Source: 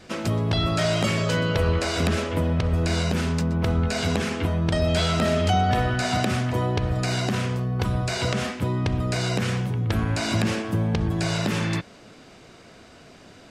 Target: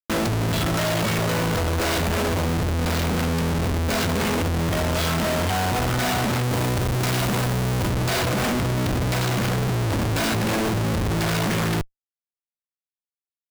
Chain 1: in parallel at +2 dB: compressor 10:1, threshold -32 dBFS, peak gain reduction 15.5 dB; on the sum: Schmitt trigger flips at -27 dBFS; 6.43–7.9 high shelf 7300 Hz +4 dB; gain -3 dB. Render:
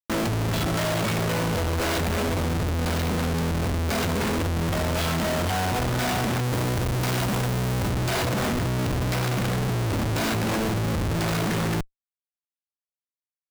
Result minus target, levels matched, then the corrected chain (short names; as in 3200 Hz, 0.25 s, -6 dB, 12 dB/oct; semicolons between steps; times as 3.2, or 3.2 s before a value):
compressor: peak gain reduction +7 dB
in parallel at +2 dB: compressor 10:1, threshold -24.5 dBFS, peak gain reduction 9 dB; on the sum: Schmitt trigger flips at -27 dBFS; 6.43–7.9 high shelf 7300 Hz +4 dB; gain -3 dB